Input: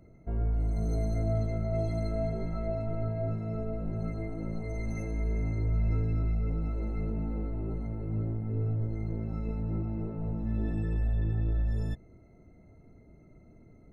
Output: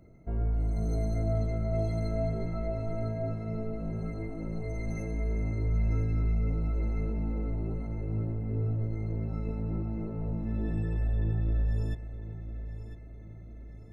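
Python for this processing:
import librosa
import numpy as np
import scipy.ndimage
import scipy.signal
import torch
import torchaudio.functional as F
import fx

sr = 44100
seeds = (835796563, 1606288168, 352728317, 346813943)

y = fx.echo_feedback(x, sr, ms=1002, feedback_pct=45, wet_db=-12)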